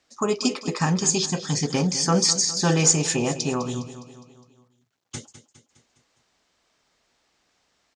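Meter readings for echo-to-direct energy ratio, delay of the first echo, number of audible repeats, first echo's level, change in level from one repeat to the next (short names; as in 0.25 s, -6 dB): -12.0 dB, 0.205 s, 4, -13.5 dB, -5.5 dB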